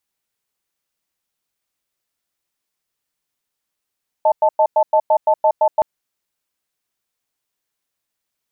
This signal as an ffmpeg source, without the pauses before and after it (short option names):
-f lavfi -i "aevalsrc='0.224*(sin(2*PI*623*t)+sin(2*PI*877*t))*clip(min(mod(t,0.17),0.07-mod(t,0.17))/0.005,0,1)':d=1.57:s=44100"